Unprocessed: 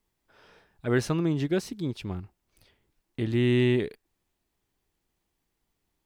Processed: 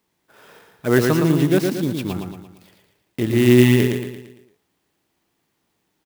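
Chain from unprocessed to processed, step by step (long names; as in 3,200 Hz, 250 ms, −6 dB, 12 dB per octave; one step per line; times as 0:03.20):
high-pass filter 130 Hz 12 dB per octave
on a send: repeating echo 114 ms, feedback 46%, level −4.5 dB
on the sum: converter with an unsteady clock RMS 0.03 ms
level +8.5 dB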